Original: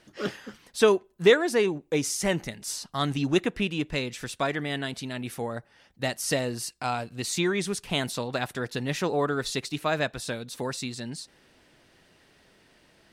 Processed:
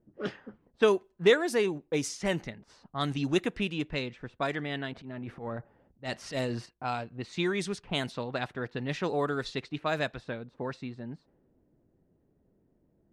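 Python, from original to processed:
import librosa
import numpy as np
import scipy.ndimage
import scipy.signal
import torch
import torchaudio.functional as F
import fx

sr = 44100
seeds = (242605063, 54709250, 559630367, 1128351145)

y = fx.env_lowpass(x, sr, base_hz=340.0, full_db=-22.0)
y = fx.transient(y, sr, attack_db=-12, sustain_db=8, at=(4.93, 6.66))
y = F.gain(torch.from_numpy(y), -3.5).numpy()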